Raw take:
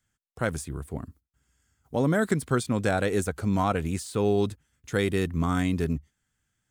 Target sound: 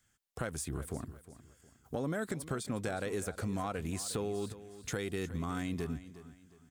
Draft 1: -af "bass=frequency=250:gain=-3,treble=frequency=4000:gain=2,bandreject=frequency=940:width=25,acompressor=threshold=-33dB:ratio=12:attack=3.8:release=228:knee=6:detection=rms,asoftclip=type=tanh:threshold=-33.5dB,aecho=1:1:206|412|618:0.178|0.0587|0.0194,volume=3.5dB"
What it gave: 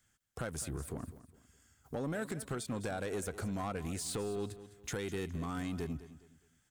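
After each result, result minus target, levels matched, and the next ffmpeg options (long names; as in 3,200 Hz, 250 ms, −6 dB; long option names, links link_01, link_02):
soft clipping: distortion +15 dB; echo 154 ms early
-af "bass=frequency=250:gain=-3,treble=frequency=4000:gain=2,bandreject=frequency=940:width=25,acompressor=threshold=-33dB:ratio=12:attack=3.8:release=228:knee=6:detection=rms,asoftclip=type=tanh:threshold=-24dB,aecho=1:1:206|412|618:0.178|0.0587|0.0194,volume=3.5dB"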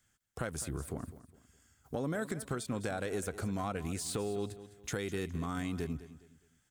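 echo 154 ms early
-af "bass=frequency=250:gain=-3,treble=frequency=4000:gain=2,bandreject=frequency=940:width=25,acompressor=threshold=-33dB:ratio=12:attack=3.8:release=228:knee=6:detection=rms,asoftclip=type=tanh:threshold=-24dB,aecho=1:1:360|720|1080:0.178|0.0587|0.0194,volume=3.5dB"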